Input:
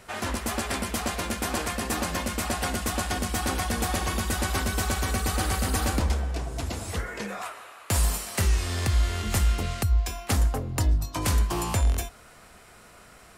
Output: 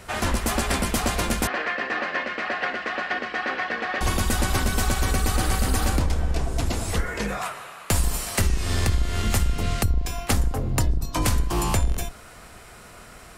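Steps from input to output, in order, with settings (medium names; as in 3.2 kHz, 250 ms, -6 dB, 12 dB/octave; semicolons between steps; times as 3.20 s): octave divider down 2 oct, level 0 dB; compression 6:1, threshold -23 dBFS, peak gain reduction 9.5 dB; 1.47–4.01 s: cabinet simulation 450–3600 Hz, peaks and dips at 890 Hz -6 dB, 1.8 kHz +8 dB, 3.5 kHz -6 dB; trim +5.5 dB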